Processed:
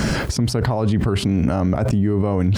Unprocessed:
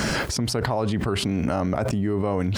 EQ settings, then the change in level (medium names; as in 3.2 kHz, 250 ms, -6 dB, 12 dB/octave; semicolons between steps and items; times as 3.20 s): bass shelf 290 Hz +9 dB; 0.0 dB